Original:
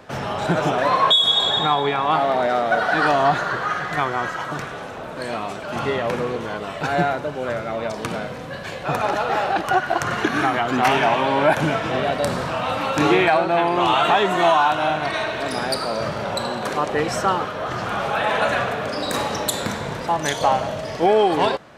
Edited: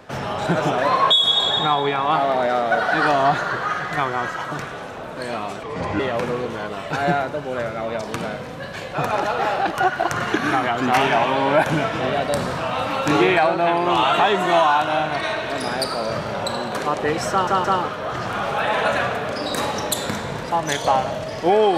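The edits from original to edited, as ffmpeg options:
ffmpeg -i in.wav -filter_complex "[0:a]asplit=5[link_01][link_02][link_03][link_04][link_05];[link_01]atrim=end=5.634[link_06];[link_02]atrim=start=5.63:end=5.9,asetpts=PTS-STARTPTS,asetrate=32634,aresample=44100[link_07];[link_03]atrim=start=5.896:end=17.382[link_08];[link_04]atrim=start=17.208:end=17.382[link_09];[link_05]atrim=start=17.208[link_10];[link_06][link_07]acrossfade=duration=0.004:curve1=hsin:curve2=hsin[link_11];[link_11][link_08]acrossfade=duration=0.004:curve1=hsin:curve2=hsin[link_12];[link_12][link_09]acrossfade=duration=0.004:curve1=hsin:curve2=hsin[link_13];[link_13][link_10]acrossfade=duration=0.004:curve1=hsin:curve2=hsin" out.wav

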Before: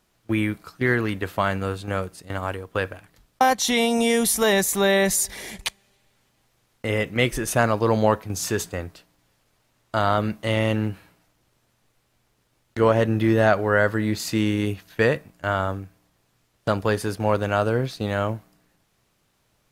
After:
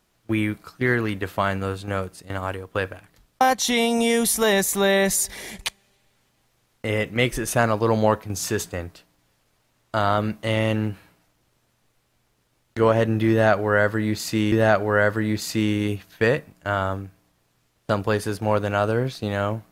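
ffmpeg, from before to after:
ffmpeg -i in.wav -filter_complex "[0:a]asplit=2[link_01][link_02];[link_01]atrim=end=14.522[link_03];[link_02]atrim=start=13.298[link_04];[link_03][link_04]acrossfade=duration=0.004:curve1=hsin:curve2=hsin" out.wav

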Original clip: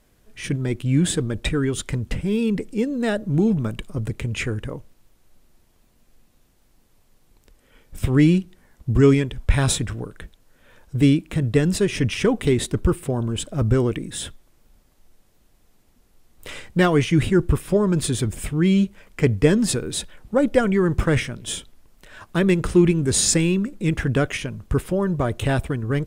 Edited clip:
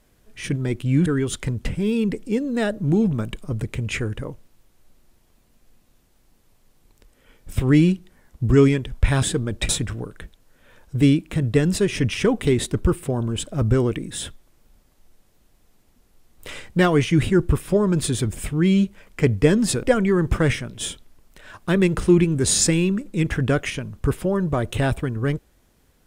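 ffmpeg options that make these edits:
ffmpeg -i in.wav -filter_complex "[0:a]asplit=5[link_01][link_02][link_03][link_04][link_05];[link_01]atrim=end=1.062[link_06];[link_02]atrim=start=1.518:end=9.692[link_07];[link_03]atrim=start=1.058:end=1.522[link_08];[link_04]atrim=start=9.688:end=19.832[link_09];[link_05]atrim=start=20.498[link_10];[link_06][link_07]acrossfade=duration=0.004:curve1=hsin:curve2=hsin[link_11];[link_11][link_08]acrossfade=duration=0.004:curve1=hsin:curve2=hsin[link_12];[link_12][link_09]acrossfade=duration=0.004:curve1=hsin:curve2=hsin[link_13];[link_13][link_10]acrossfade=duration=0.004:curve1=hsin:curve2=hsin" out.wav

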